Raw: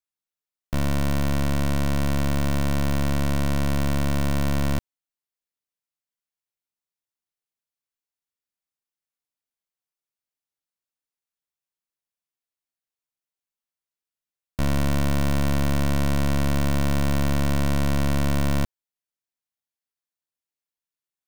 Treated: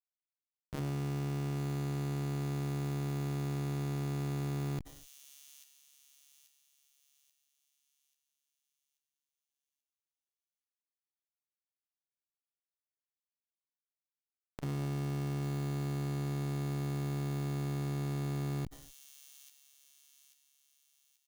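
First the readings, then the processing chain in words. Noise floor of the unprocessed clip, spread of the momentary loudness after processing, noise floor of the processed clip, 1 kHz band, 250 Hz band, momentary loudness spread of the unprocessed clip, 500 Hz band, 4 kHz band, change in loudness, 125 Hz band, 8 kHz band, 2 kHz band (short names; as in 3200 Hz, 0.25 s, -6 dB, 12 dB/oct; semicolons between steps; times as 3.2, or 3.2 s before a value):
under -85 dBFS, 18 LU, under -85 dBFS, -14.0 dB, -12.5 dB, 3 LU, -12.0 dB, -15.5 dB, -11.5 dB, -9.5 dB, -13.5 dB, -17.0 dB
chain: HPF 56 Hz 12 dB/oct; low shelf 78 Hz +10 dB; comb 6.5 ms, depth 37%; Schmitt trigger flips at -39 dBFS; on a send: thin delay 0.836 s, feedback 43%, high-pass 5400 Hz, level -7 dB; on the sum: non-linear reverb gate 0.27 s falling, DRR 11 dB; core saturation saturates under 270 Hz; gain -6.5 dB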